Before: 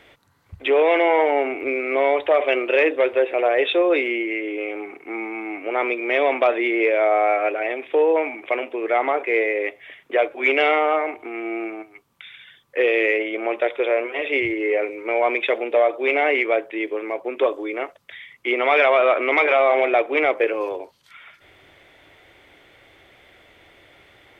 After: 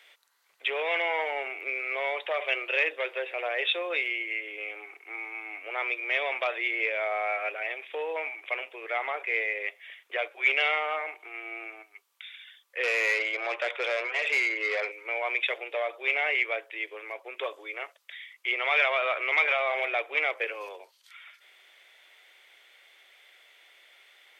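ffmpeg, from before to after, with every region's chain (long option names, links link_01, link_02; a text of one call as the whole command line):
ffmpeg -i in.wav -filter_complex "[0:a]asettb=1/sr,asplit=3[link_01][link_02][link_03];[link_01]atrim=end=12.834[link_04];[link_02]atrim=start=12.83:end=14.92,asetpts=PTS-STARTPTS,afade=type=in:duration=0.004:curve=qsin,afade=type=out:start_time=2.086:duration=0.004:curve=qsin,asplit=2[link_05][link_06];[link_06]highpass=frequency=720:poles=1,volume=17dB,asoftclip=type=tanh:threshold=-7.5dB[link_07];[link_05][link_07]amix=inputs=2:normalize=0,lowpass=frequency=3300:poles=1,volume=-6dB,highshelf=frequency=2800:gain=-9[link_08];[link_03]atrim=start=14.916[link_09];[link_04][link_08]acrossfade=duration=0.004:curve1=hsin:curve2=qsin[link_10];[link_10][link_09]acrossfade=duration=0.004:curve1=qsin:curve2=hsin,highpass=frequency=410:width=0.5412,highpass=frequency=410:width=1.3066,tiltshelf=frequency=1200:gain=-9,volume=-8.5dB" out.wav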